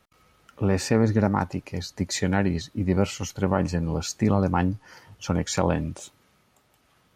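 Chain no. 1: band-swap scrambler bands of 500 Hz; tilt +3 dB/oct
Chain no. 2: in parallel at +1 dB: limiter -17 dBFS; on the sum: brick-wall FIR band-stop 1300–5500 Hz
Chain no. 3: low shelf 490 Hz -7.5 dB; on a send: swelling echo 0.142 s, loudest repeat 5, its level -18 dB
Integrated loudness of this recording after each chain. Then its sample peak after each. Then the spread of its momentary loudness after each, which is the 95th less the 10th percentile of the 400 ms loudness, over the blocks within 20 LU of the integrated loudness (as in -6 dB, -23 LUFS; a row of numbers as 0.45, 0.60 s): -25.0, -21.5, -30.0 LUFS; -8.0, -5.0, -9.5 dBFS; 10, 9, 12 LU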